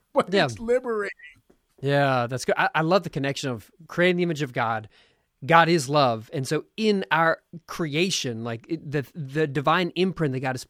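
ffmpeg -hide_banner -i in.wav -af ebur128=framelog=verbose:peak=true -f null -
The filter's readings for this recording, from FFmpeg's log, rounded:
Integrated loudness:
  I:         -24.0 LUFS
  Threshold: -34.4 LUFS
Loudness range:
  LRA:         3.0 LU
  Threshold: -44.2 LUFS
  LRA low:   -25.9 LUFS
  LRA high:  -22.9 LUFS
True peak:
  Peak:       -1.8 dBFS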